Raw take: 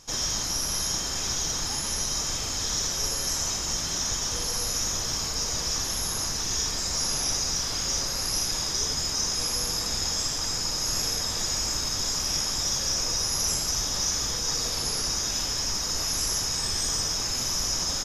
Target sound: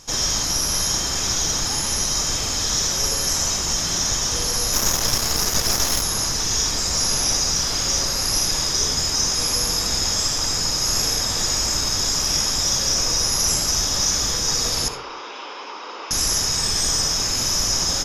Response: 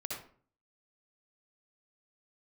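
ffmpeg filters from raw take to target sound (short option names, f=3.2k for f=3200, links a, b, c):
-filter_complex "[0:a]asettb=1/sr,asplit=3[a][b][c];[a]atrim=end=14.884[d];[b]atrim=start=14.88:end=16.11,asetpts=PTS-STARTPTS,afade=t=in:d=0.004:c=qsin,afade=t=out:st=1.226:d=0.004:c=qsin,highpass=f=380:w=0.5412,highpass=f=380:w=1.3066,equalizer=f=650:t=q:w=4:g=-8,equalizer=f=1k:t=q:w=4:g=4,equalizer=f=1.8k:t=q:w=4:g=-10,lowpass=f=2.9k:w=0.5412,lowpass=f=2.9k:w=1.3066[e];[c]atrim=start=16.106[f];[d][e]acrossfade=d=0.004:c1=hsin:c2=qsin[g];[g][f]acrossfade=d=0.004:c1=qsin:c2=hsin,asplit=2[h][i];[1:a]atrim=start_sample=2205[j];[i][j]afir=irnorm=-1:irlink=0,volume=-6.5dB[k];[h][k]amix=inputs=2:normalize=0,asplit=3[l][m][n];[l]afade=t=out:st=4.72:d=0.02[o];[m]aeval=exprs='0.237*(cos(1*acos(clip(val(0)/0.237,-1,1)))-cos(1*PI/2))+0.075*(cos(4*acos(clip(val(0)/0.237,-1,1)))-cos(4*PI/2))':c=same,afade=t=in:st=4.72:d=0.02,afade=t=out:st=6.01:d=0.02[p];[n]afade=t=in:st=6.01:d=0.02[q];[o][p][q]amix=inputs=3:normalize=0,volume=4dB"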